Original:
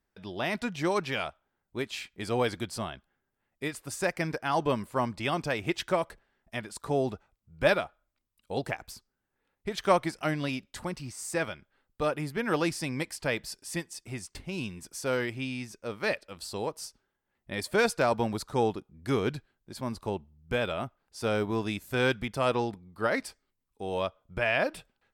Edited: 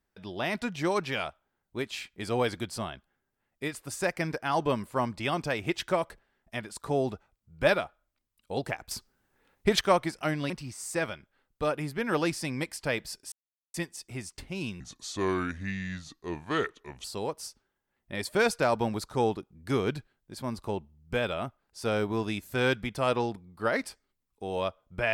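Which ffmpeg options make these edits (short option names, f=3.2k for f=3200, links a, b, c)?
-filter_complex "[0:a]asplit=7[a][b][c][d][e][f][g];[a]atrim=end=8.912[h];[b]atrim=start=8.908:end=9.812,asetpts=PTS-STARTPTS,volume=10dB[i];[c]atrim=start=9.808:end=10.502[j];[d]atrim=start=10.888:end=13.71,asetpts=PTS-STARTPTS,afade=t=out:st=2.818:d=0.004:c=hsin,apad=pad_dur=0.42[k];[e]atrim=start=13.71:end=14.774,asetpts=PTS-STARTPTS,afade=t=in:d=0.004:c=hsin[l];[f]atrim=start=14.77:end=16.43,asetpts=PTS-STARTPTS,asetrate=32634,aresample=44100,atrim=end_sample=98927,asetpts=PTS-STARTPTS[m];[g]atrim=start=16.426[n];[h][i]acrossfade=d=0.004:c1=hsin:c2=hsin[o];[o][j]acrossfade=d=0.004:c1=hsin:c2=hsin[p];[k][l]concat=n=2:v=0:a=1[q];[p][q]acrossfade=d=0.004:c1=hsin:c2=hsin[r];[r][m]acrossfade=d=0.004:c1=hsin:c2=hsin[s];[s][n]acrossfade=d=0.004:c1=hsin:c2=hsin"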